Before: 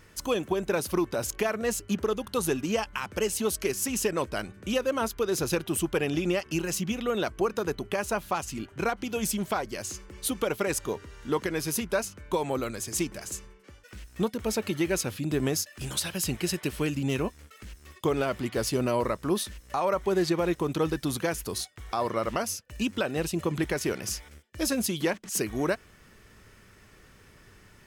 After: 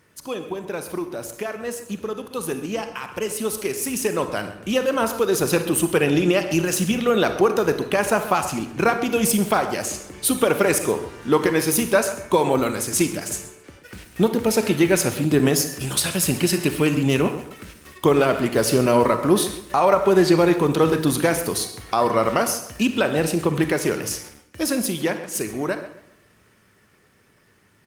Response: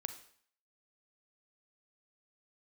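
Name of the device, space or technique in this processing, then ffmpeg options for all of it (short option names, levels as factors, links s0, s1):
far-field microphone of a smart speaker: -filter_complex "[0:a]asplit=3[s0][s1][s2];[s0]afade=t=out:st=13.13:d=0.02[s3];[s1]bandreject=f=1100:w=12,afade=t=in:st=13.13:d=0.02,afade=t=out:st=14.72:d=0.02[s4];[s2]afade=t=in:st=14.72:d=0.02[s5];[s3][s4][s5]amix=inputs=3:normalize=0,asplit=2[s6][s7];[s7]adelay=132,lowpass=f=4200:p=1,volume=0.224,asplit=2[s8][s9];[s9]adelay=132,lowpass=f=4200:p=1,volume=0.36,asplit=2[s10][s11];[s11]adelay=132,lowpass=f=4200:p=1,volume=0.36,asplit=2[s12][s13];[s13]adelay=132,lowpass=f=4200:p=1,volume=0.36[s14];[s6][s8][s10][s12][s14]amix=inputs=5:normalize=0[s15];[1:a]atrim=start_sample=2205[s16];[s15][s16]afir=irnorm=-1:irlink=0,highpass=110,dynaudnorm=f=420:g=21:m=4.22" -ar 48000 -c:a libopus -b:a 32k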